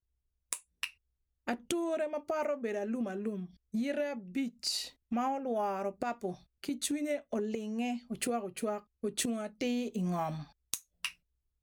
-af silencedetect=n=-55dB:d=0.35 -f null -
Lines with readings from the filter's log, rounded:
silence_start: 0.00
silence_end: 0.52 | silence_duration: 0.52
silence_start: 0.94
silence_end: 1.47 | silence_duration: 0.54
silence_start: 11.14
silence_end: 11.62 | silence_duration: 0.48